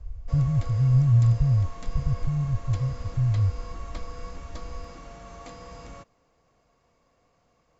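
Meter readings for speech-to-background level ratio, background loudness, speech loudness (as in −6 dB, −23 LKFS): 19.0 dB, −43.5 LKFS, −24.5 LKFS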